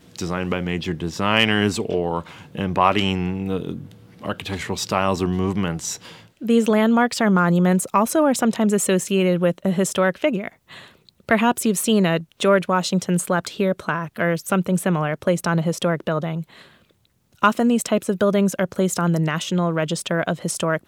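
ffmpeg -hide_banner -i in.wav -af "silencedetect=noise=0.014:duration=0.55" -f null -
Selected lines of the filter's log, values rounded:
silence_start: 16.65
silence_end: 17.42 | silence_duration: 0.77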